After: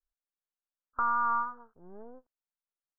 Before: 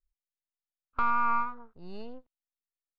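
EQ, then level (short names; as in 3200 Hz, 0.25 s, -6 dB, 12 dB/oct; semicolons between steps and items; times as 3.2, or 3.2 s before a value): steep low-pass 1700 Hz 72 dB/oct; low shelf 300 Hz -11 dB; 0.0 dB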